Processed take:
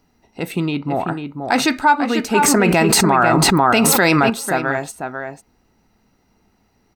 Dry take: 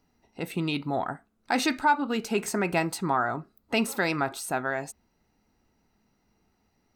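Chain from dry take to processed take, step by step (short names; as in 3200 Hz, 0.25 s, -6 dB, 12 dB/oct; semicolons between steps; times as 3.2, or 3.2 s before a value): 0.65–1.07 LPF 1800 Hz -> 1000 Hz 6 dB/oct; outdoor echo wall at 85 m, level -6 dB; 2.37–4.3 fast leveller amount 100%; gain +8.5 dB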